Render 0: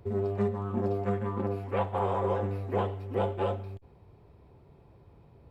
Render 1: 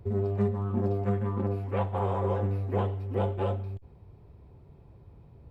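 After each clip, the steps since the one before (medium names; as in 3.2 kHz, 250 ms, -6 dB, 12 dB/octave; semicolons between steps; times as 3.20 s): bass shelf 210 Hz +9 dB; trim -2.5 dB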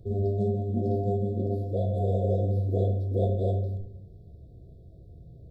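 brick-wall FIR band-stop 730–3300 Hz; simulated room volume 190 m³, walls mixed, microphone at 0.68 m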